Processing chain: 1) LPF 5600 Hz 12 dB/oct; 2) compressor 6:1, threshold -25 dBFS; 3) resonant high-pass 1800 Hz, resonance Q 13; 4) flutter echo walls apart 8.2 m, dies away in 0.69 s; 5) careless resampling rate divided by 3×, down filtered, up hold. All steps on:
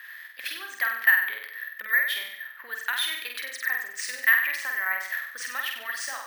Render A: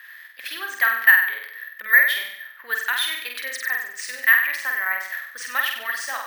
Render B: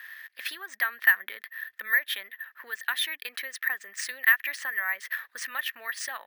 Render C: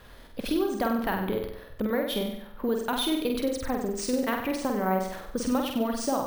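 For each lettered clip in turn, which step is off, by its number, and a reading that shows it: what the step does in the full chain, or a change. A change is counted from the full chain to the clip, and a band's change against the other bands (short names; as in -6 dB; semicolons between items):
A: 2, mean gain reduction 3.0 dB; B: 4, crest factor change +2.0 dB; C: 3, 500 Hz band +23.0 dB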